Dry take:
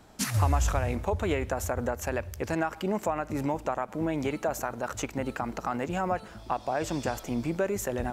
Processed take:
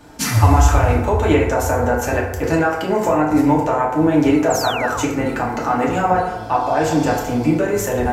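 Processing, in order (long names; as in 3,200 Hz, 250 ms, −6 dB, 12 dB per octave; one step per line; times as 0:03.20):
feedback delay network reverb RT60 0.99 s, low-frequency decay 0.75×, high-frequency decay 0.45×, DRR −4.5 dB
dynamic equaliser 9,200 Hz, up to −4 dB, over −55 dBFS, Q 4.5
sound drawn into the spectrogram fall, 0:04.50–0:05.04, 840–7,900 Hz −34 dBFS
level +6.5 dB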